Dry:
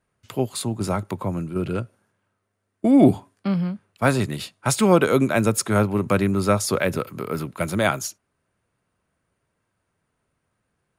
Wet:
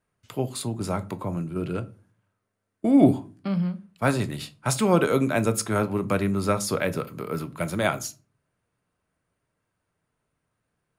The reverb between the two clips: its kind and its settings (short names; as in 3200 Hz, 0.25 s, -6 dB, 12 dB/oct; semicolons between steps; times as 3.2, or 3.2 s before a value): shoebox room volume 180 m³, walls furnished, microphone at 0.43 m; gain -4 dB